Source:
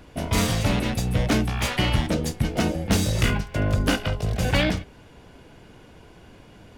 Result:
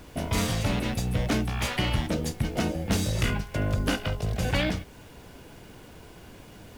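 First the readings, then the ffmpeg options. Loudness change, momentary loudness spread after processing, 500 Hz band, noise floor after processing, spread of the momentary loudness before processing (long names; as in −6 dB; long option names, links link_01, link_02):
−4.0 dB, 21 LU, −4.0 dB, −48 dBFS, 4 LU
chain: -filter_complex "[0:a]asplit=2[link_01][link_02];[link_02]acompressor=threshold=-31dB:ratio=6,volume=3dB[link_03];[link_01][link_03]amix=inputs=2:normalize=0,acrusher=bits=7:mix=0:aa=0.000001,volume=-7dB"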